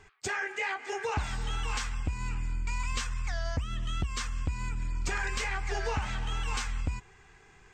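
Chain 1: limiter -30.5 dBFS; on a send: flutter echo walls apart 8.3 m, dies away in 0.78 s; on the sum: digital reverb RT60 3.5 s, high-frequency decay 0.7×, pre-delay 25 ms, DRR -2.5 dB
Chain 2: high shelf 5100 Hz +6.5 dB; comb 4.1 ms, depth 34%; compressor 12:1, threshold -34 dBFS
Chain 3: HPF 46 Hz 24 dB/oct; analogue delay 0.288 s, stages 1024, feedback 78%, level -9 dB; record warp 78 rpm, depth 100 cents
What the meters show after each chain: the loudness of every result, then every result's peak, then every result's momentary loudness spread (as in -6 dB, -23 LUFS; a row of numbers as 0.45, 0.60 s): -28.0, -39.5, -35.0 LUFS; -13.0, -21.0, -18.5 dBFS; 8, 4, 5 LU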